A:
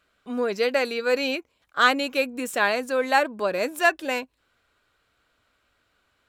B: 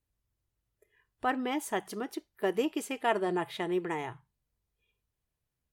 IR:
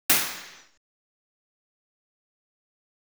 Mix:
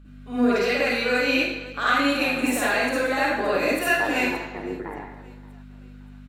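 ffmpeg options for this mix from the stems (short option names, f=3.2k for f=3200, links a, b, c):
-filter_complex "[0:a]alimiter=limit=-17.5dB:level=0:latency=1:release=211,aeval=exprs='val(0)+0.00794*(sin(2*PI*50*n/s)+sin(2*PI*2*50*n/s)/2+sin(2*PI*3*50*n/s)/3+sin(2*PI*4*50*n/s)/4+sin(2*PI*5*50*n/s)/5)':c=same,volume=-3dB,asplit=4[a][b][c][d];[b]volume=-9dB[e];[c]volume=-14.5dB[f];[1:a]lowpass=f=2k:w=0.5412,lowpass=f=2k:w=1.3066,tremolo=f=100:d=0.947,adelay=950,volume=2.5dB,asplit=3[g][h][i];[h]volume=-21dB[j];[i]volume=-20.5dB[k];[d]apad=whole_len=294549[l];[g][l]sidechaincompress=threshold=-32dB:ratio=8:attack=16:release=245[m];[2:a]atrim=start_sample=2205[n];[e][j]amix=inputs=2:normalize=0[o];[o][n]afir=irnorm=-1:irlink=0[p];[f][k]amix=inputs=2:normalize=0,aecho=0:1:575|1150|1725|2300|2875:1|0.37|0.137|0.0507|0.0187[q];[a][m][p][q]amix=inputs=4:normalize=0,equalizer=f=110:t=o:w=0.41:g=-12.5"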